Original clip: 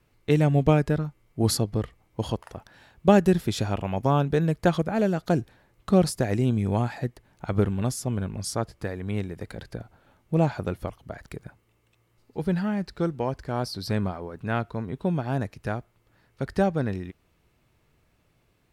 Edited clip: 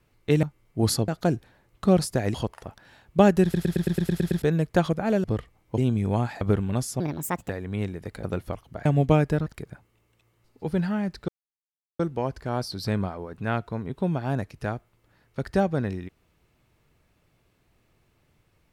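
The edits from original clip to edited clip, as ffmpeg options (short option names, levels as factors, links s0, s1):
-filter_complex "[0:a]asplit=22[s0][s1][s2][s3][s4][s5][s6][s7][s8][s9][s10][s11][s12][s13][s14][s15][s16][s17][s18][s19][s20][s21];[s0]atrim=end=0.432[s22];[s1]atrim=start=1.038:end=1.692[s23];[s2]atrim=start=5.128:end=6.392[s24];[s3]atrim=start=2.228:end=3.432[s25];[s4]atrim=start=3.318:end=3.432[s26];[s5]atrim=start=3.318:end=3.432[s27];[s6]atrim=start=3.318:end=3.432[s28];[s7]atrim=start=3.318:end=3.432[s29];[s8]atrim=start=3.318:end=3.432[s30];[s9]atrim=start=3.318:end=3.432[s31];[s10]atrim=start=3.318:end=3.432[s32];[s11]atrim=start=3.318:end=3.432[s33];[s12]atrim=start=4.308:end=5.132[s34];[s13]atrim=start=1.688:end=2.232[s35];[s14]atrim=start=6.388:end=7.022[s36];[s15]atrim=start=7.498:end=8.094[s37];[s16]atrim=start=8.09:end=8.85,asetpts=PTS-STARTPTS,asetrate=67914,aresample=44100[s38];[s17]atrim=start=8.846:end=9.592[s39];[s18]atrim=start=10.578:end=11.202[s40];[s19]atrim=start=0.428:end=1.042[s41];[s20]atrim=start=11.198:end=13.02,asetpts=PTS-STARTPTS,afade=t=out:st=1.818:d=0.004:c=hsin,apad=pad_dur=0.71[s42];[s21]atrim=start=13.02,asetpts=PTS-STARTPTS,afade=t=in:d=0.004:c=hsin[s43];[s22][s23]acrossfade=d=0.004:c1=hsin:c2=hsin[s44];[s44][s24]acrossfade=d=0.004:c1=hsin:c2=hsin[s45];[s45][s25]acrossfade=d=0.004:c1=hsin:c2=hsin[s46];[s46][s26]acrossfade=d=0.004:c1=hsin:c2=hsin[s47];[s47][s27]acrossfade=d=0.004:c1=hsin:c2=hsin[s48];[s48][s28]acrossfade=d=0.004:c1=hsin:c2=hsin[s49];[s49][s29]acrossfade=d=0.004:c1=hsin:c2=hsin[s50];[s50][s30]acrossfade=d=0.004:c1=hsin:c2=hsin[s51];[s51][s31]acrossfade=d=0.004:c1=hsin:c2=hsin[s52];[s52][s32]acrossfade=d=0.004:c1=hsin:c2=hsin[s53];[s53][s33]acrossfade=d=0.004:c1=hsin:c2=hsin[s54];[s54][s34]acrossfade=d=0.004:c1=hsin:c2=hsin[s55];[s55][s35]acrossfade=d=0.004:c1=hsin:c2=hsin[s56];[s56][s36]acrossfade=d=0.004:c1=hsin:c2=hsin[s57];[s57][s37]acrossfade=d=0.004:c1=hsin:c2=hsin[s58];[s58][s38]acrossfade=d=0.004:c1=hsin:c2=hsin[s59];[s59][s39]acrossfade=d=0.004:c1=hsin:c2=hsin[s60];[s60][s40]acrossfade=d=0.004:c1=hsin:c2=hsin[s61];[s61][s41]acrossfade=d=0.004:c1=hsin:c2=hsin[s62];[s42][s43]concat=n=2:v=0:a=1[s63];[s62][s63]acrossfade=d=0.004:c1=hsin:c2=hsin"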